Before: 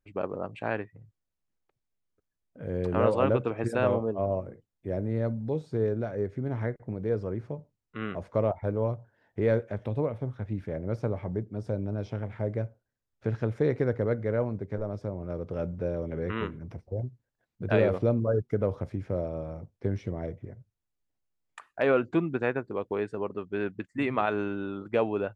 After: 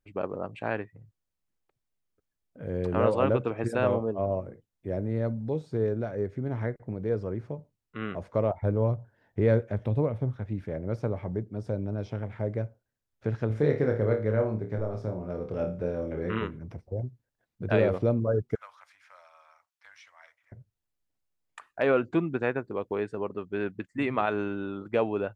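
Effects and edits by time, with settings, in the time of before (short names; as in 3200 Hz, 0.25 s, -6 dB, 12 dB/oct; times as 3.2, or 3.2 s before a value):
8.62–10.36 low shelf 210 Hz +6.5 dB
13.47–16.39 flutter echo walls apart 4.7 m, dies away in 0.32 s
18.55–20.52 inverse Chebyshev high-pass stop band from 430 Hz, stop band 50 dB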